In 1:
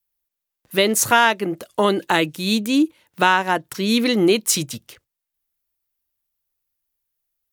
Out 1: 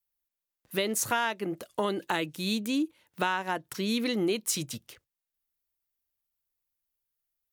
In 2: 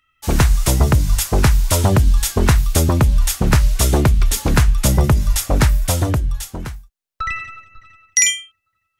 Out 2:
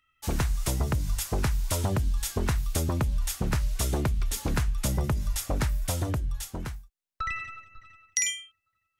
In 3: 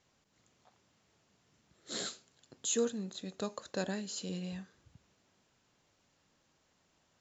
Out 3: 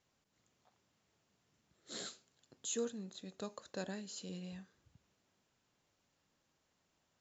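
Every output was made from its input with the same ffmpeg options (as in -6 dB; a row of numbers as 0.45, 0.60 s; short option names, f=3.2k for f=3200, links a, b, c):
-af "acompressor=threshold=-22dB:ratio=2,volume=-6.5dB"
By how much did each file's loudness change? -11.5, -13.0, -6.5 LU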